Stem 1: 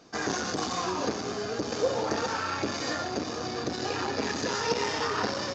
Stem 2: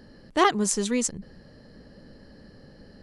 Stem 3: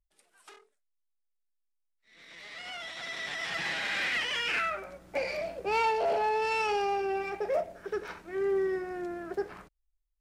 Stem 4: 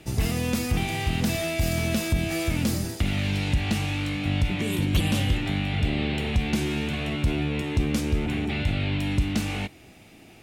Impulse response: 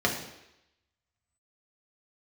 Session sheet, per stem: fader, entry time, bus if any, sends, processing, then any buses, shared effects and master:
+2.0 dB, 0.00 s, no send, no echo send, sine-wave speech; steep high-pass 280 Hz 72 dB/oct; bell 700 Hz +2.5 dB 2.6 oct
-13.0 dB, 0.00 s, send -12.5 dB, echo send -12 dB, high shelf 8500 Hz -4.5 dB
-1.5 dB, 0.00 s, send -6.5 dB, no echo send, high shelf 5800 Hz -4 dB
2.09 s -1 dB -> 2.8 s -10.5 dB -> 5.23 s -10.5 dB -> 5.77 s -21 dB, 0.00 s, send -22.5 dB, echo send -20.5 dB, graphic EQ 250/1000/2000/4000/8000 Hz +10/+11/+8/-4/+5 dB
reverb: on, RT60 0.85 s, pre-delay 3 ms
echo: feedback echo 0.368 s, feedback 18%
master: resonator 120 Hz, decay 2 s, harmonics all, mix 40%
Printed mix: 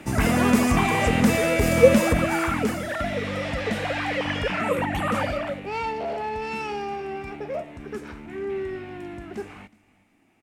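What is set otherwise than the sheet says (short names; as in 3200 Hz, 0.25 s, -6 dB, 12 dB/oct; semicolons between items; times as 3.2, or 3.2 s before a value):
stem 3: send off; stem 4: send off; master: missing resonator 120 Hz, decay 2 s, harmonics all, mix 40%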